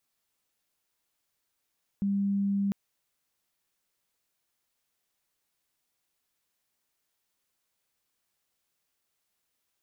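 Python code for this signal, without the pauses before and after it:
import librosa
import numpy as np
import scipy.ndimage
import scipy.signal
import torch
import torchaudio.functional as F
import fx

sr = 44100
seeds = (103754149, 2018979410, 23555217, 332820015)

y = 10.0 ** (-24.5 / 20.0) * np.sin(2.0 * np.pi * (199.0 * (np.arange(round(0.7 * sr)) / sr)))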